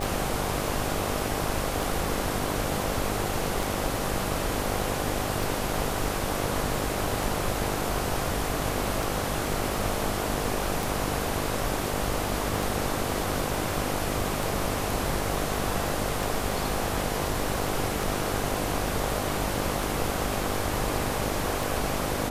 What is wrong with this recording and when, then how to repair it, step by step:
buzz 50 Hz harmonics 16 -33 dBFS
tick 33 1/3 rpm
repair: de-click; de-hum 50 Hz, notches 16

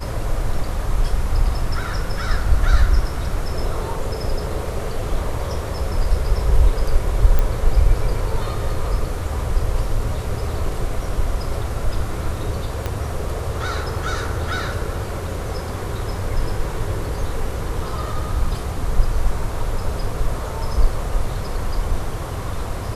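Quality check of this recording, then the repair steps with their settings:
7.39 s: pop -7 dBFS
12.86 s: pop -10 dBFS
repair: de-click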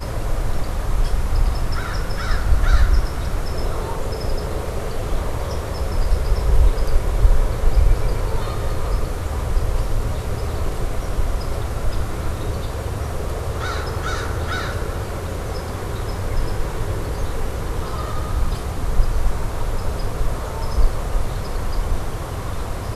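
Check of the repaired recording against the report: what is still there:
12.86 s: pop

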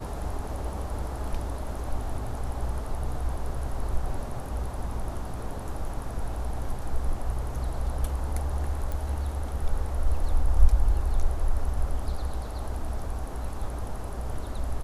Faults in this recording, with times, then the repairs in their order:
8.92 s: pop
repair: de-click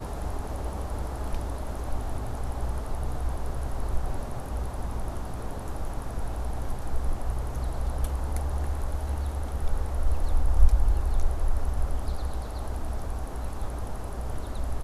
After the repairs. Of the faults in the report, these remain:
8.92 s: pop

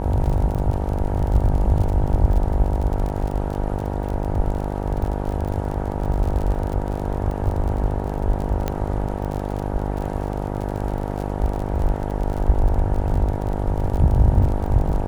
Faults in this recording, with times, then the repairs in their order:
buzz 50 Hz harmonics 19 -26 dBFS
crackle 38 per s -27 dBFS
8.68 s: pop -10 dBFS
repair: de-click; de-hum 50 Hz, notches 19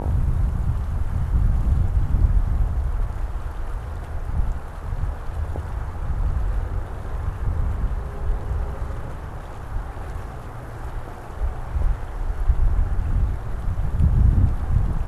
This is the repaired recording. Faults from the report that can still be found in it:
nothing left

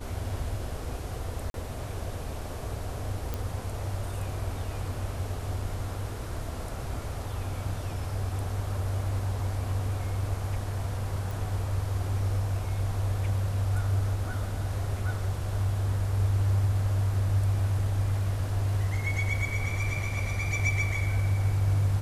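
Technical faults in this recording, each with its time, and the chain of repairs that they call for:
1.50–1.54 s: dropout 42 ms
3.34 s: pop
11.31 s: pop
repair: de-click; interpolate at 1.50 s, 42 ms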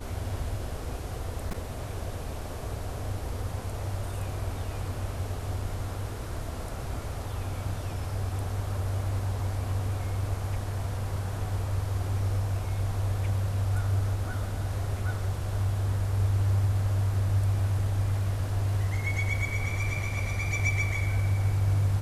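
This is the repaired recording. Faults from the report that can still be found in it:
nothing left

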